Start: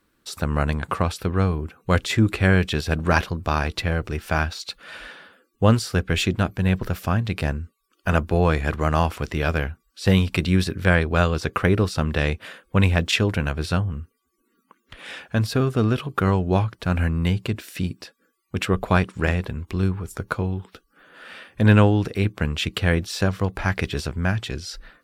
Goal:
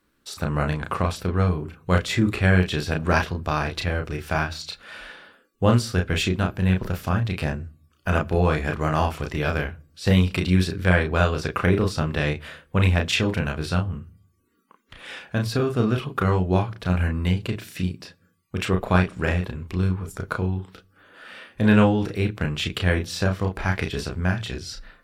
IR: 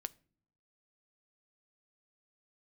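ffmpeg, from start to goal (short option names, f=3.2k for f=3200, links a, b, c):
-filter_complex "[0:a]asplit=2[a][b];[1:a]atrim=start_sample=2205,lowpass=7.4k,adelay=33[c];[b][c]afir=irnorm=-1:irlink=0,volume=-1dB[d];[a][d]amix=inputs=2:normalize=0,volume=-2.5dB"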